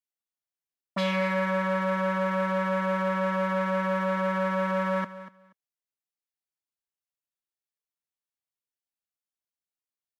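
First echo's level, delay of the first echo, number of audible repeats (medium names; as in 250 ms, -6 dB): -15.0 dB, 240 ms, 2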